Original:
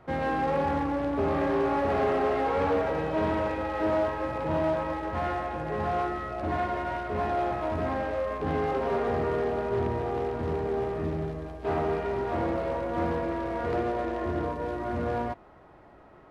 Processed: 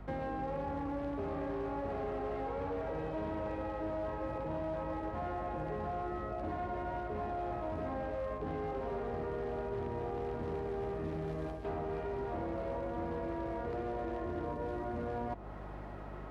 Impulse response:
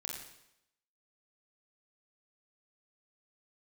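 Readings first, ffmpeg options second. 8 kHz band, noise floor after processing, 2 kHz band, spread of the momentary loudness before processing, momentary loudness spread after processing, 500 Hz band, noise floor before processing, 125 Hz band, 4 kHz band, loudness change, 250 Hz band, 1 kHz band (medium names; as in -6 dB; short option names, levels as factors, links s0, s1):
no reading, -44 dBFS, -12.5 dB, 5 LU, 1 LU, -9.5 dB, -53 dBFS, -8.0 dB, under -10 dB, -9.5 dB, -9.0 dB, -10.0 dB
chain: -filter_complex "[0:a]areverse,acompressor=threshold=0.0126:ratio=5,areverse,aeval=exprs='val(0)+0.00282*(sin(2*PI*50*n/s)+sin(2*PI*2*50*n/s)/2+sin(2*PI*3*50*n/s)/3+sin(2*PI*4*50*n/s)/4+sin(2*PI*5*50*n/s)/5)':c=same,acrossover=split=160|970[s0][s1][s2];[s0]acompressor=threshold=0.00355:ratio=4[s3];[s1]acompressor=threshold=0.00794:ratio=4[s4];[s2]acompressor=threshold=0.00141:ratio=4[s5];[s3][s4][s5]amix=inputs=3:normalize=0,volume=1.88"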